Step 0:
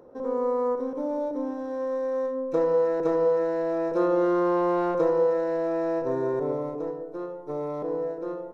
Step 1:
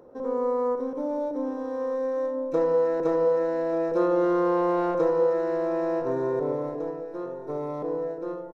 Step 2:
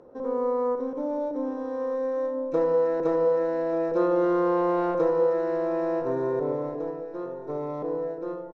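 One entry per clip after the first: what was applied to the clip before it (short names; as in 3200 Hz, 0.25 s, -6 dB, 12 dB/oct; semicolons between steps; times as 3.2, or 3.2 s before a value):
echo 1.188 s -15.5 dB
air absorption 58 m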